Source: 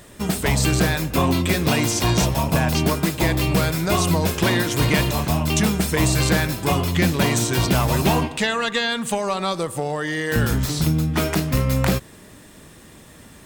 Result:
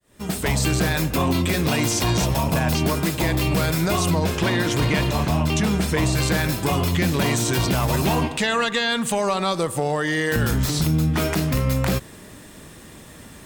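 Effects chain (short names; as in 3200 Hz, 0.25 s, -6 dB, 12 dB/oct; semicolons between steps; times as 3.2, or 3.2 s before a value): opening faded in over 0.61 s; 4.1–6.17 high shelf 7800 Hz -10 dB; limiter -15 dBFS, peak gain reduction 6.5 dB; gain +2.5 dB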